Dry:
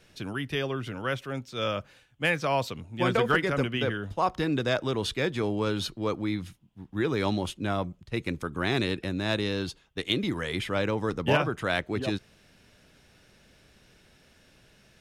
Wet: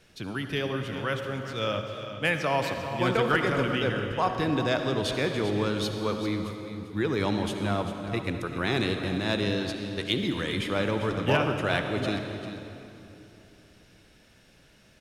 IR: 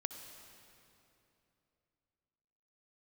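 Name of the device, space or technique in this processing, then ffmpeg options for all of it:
cave: -filter_complex "[0:a]aecho=1:1:394:0.266[a];[1:a]atrim=start_sample=2205[b];[a][b]afir=irnorm=-1:irlink=0,volume=1.5dB"

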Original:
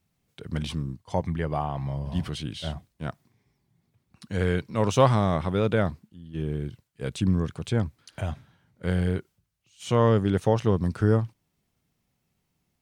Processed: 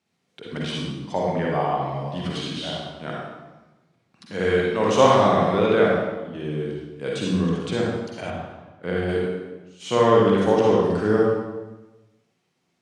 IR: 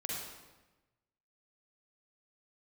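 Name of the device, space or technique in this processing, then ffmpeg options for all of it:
supermarket ceiling speaker: -filter_complex "[0:a]highpass=250,lowpass=6.8k[a];[1:a]atrim=start_sample=2205[b];[a][b]afir=irnorm=-1:irlink=0,asettb=1/sr,asplit=3[c][d][e];[c]atrim=end=8.304[f];[d]atrim=start=8.3:end=9.09,asetpts=PTS-STARTPTS,afade=t=in:d=0.004:c=qsin,afade=t=out:st=0.786:d=0.004:c=qsin,highshelf=f=4.2k:g=-10[g];[e]atrim=start=9.086[h];[f][g]acrossfade=d=0.004:c1=hsin:c2=qsin[i];[i][h]acrossfade=d=0.004:c1=qsin:c2=hsin,volume=5.5dB"

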